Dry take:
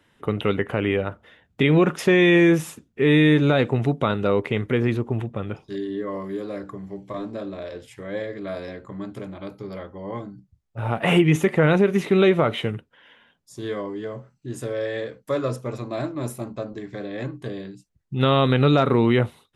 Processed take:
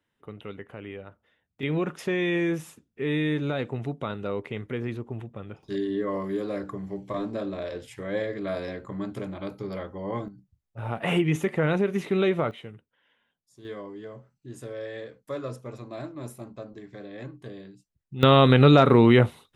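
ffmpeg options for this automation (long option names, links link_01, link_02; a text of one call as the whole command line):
ffmpeg -i in.wav -af "asetnsamples=nb_out_samples=441:pad=0,asendcmd='1.63 volume volume -10dB;5.63 volume volume 0.5dB;10.28 volume volume -6.5dB;12.51 volume volume -16dB;13.65 volume volume -9dB;18.23 volume volume 2dB',volume=-17dB" out.wav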